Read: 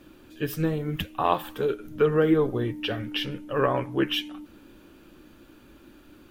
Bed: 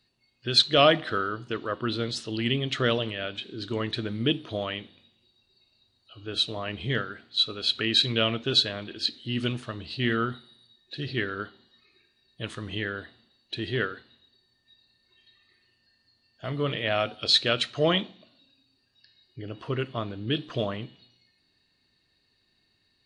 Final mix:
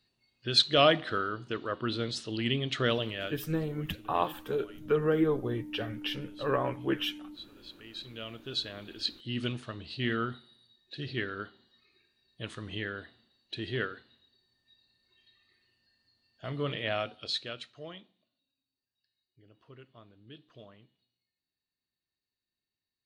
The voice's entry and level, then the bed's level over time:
2.90 s, −5.5 dB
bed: 0:03.26 −3.5 dB
0:03.54 −23.5 dB
0:07.82 −23.5 dB
0:09.00 −5 dB
0:16.90 −5 dB
0:17.96 −23 dB

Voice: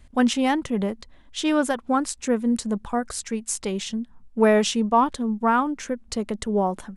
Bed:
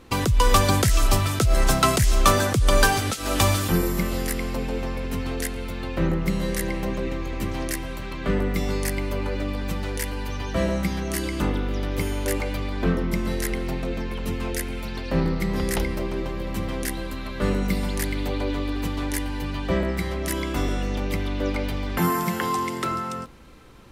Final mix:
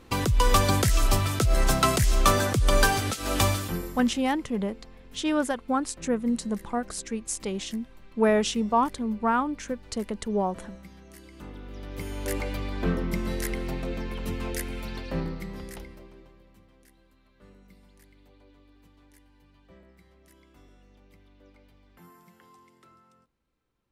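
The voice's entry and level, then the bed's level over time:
3.80 s, −4.0 dB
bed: 0:03.44 −3 dB
0:04.30 −22 dB
0:11.25 −22 dB
0:12.38 −4 dB
0:14.94 −4 dB
0:16.70 −31 dB

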